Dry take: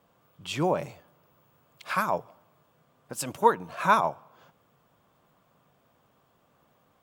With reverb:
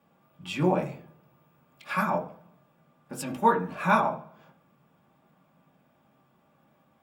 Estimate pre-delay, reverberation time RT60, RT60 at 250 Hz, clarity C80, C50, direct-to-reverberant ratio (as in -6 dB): 3 ms, 0.50 s, 0.70 s, 17.0 dB, 11.5 dB, -2.0 dB